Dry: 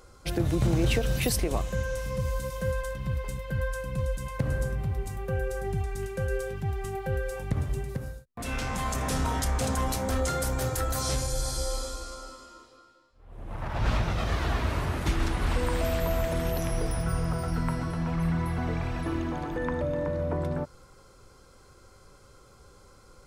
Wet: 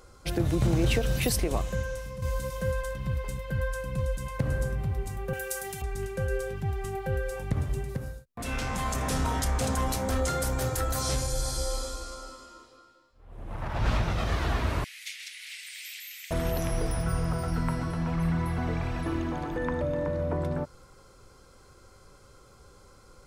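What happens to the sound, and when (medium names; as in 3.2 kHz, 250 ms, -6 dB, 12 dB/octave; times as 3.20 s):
1.71–2.22 s: fade out, to -9.5 dB
5.33–5.82 s: tilt EQ +4.5 dB/octave
14.84–16.31 s: elliptic high-pass 2.1 kHz, stop band 60 dB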